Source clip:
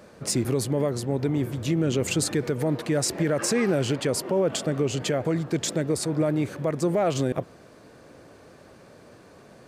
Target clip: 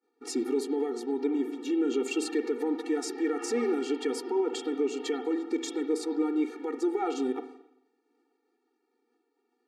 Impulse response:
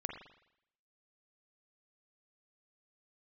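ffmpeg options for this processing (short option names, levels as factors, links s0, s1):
-filter_complex "[0:a]aemphasis=mode=reproduction:type=75fm,agate=range=0.0224:threshold=0.0158:ratio=3:detection=peak,asplit=2[s0][s1];[1:a]atrim=start_sample=2205,asetrate=42777,aresample=44100,highshelf=f=3000:g=11.5[s2];[s1][s2]afir=irnorm=-1:irlink=0,volume=0.944[s3];[s0][s3]amix=inputs=2:normalize=0,afftfilt=real='re*eq(mod(floor(b*sr/1024/240),2),1)':imag='im*eq(mod(floor(b*sr/1024/240),2),1)':win_size=1024:overlap=0.75,volume=0.422"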